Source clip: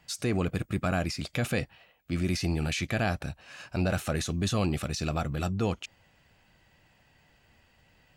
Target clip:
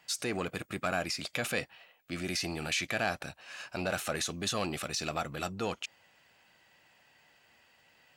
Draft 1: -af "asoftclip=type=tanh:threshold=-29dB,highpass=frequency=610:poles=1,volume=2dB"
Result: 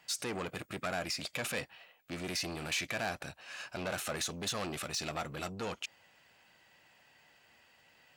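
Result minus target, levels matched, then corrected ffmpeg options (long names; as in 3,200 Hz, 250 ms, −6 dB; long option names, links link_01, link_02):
soft clipping: distortion +12 dB
-af "asoftclip=type=tanh:threshold=-19dB,highpass=frequency=610:poles=1,volume=2dB"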